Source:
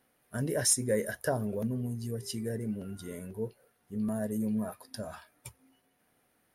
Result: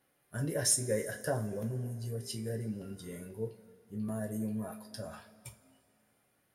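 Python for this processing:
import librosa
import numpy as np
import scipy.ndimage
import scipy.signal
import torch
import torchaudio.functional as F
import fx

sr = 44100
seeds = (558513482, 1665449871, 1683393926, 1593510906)

y = fx.rev_double_slope(x, sr, seeds[0], early_s=0.24, late_s=2.7, knee_db=-22, drr_db=2.0)
y = y * 10.0 ** (-4.5 / 20.0)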